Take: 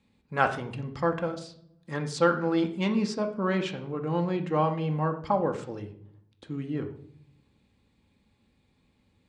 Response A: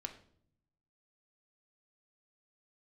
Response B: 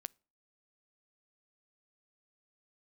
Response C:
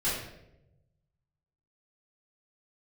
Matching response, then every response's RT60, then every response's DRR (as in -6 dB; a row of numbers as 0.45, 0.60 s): A; 0.60, 0.40, 0.90 s; 4.5, 21.0, -12.0 dB